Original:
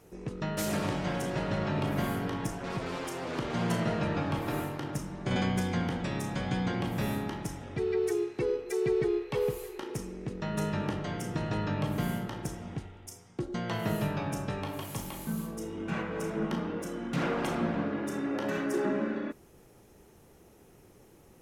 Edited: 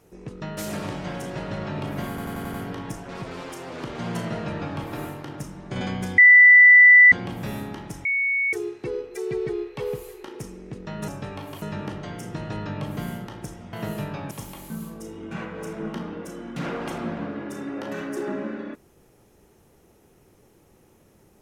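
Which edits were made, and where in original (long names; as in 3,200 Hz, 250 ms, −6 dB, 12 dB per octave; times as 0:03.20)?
0:02.09: stutter 0.09 s, 6 plays
0:05.73–0:06.67: beep over 1,980 Hz −7.5 dBFS
0:07.60–0:08.08: beep over 2,220 Hz −20 dBFS
0:12.74–0:13.76: remove
0:14.34–0:14.88: move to 0:10.63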